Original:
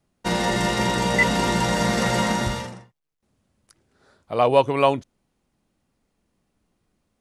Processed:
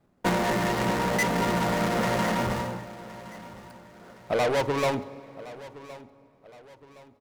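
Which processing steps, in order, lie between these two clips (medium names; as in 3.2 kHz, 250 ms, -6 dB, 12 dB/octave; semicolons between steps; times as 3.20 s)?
median filter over 15 samples; in parallel at -1 dB: gain riding; on the sum: saturation -22 dBFS, distortion -6 dB; de-hum 52.06 Hz, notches 28; transient shaper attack +5 dB, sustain 0 dB; bass shelf 100 Hz -8.5 dB; feedback delay 1066 ms, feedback 40%, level -18 dB; on a send at -18 dB: reverberation RT60 3.9 s, pre-delay 34 ms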